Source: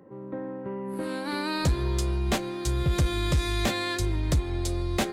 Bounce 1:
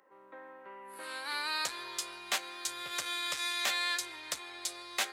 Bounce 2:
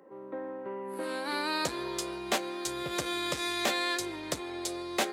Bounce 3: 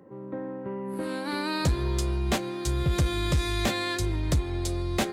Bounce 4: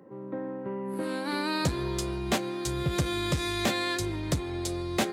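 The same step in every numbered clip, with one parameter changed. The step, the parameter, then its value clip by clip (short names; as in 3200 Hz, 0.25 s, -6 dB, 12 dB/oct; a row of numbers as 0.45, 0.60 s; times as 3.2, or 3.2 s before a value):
HPF, cutoff: 1200, 400, 42, 120 Hz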